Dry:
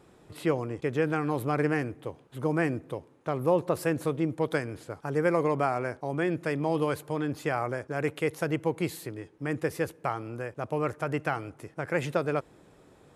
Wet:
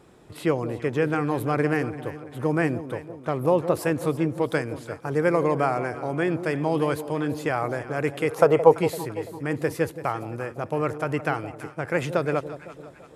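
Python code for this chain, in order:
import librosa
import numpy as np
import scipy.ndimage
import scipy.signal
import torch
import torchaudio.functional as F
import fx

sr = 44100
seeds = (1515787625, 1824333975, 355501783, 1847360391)

y = fx.spec_box(x, sr, start_s=8.29, length_s=0.44, low_hz=400.0, high_hz=1400.0, gain_db=12)
y = fx.echo_alternate(y, sr, ms=169, hz=820.0, feedback_pct=66, wet_db=-11.0)
y = F.gain(torch.from_numpy(y), 3.5).numpy()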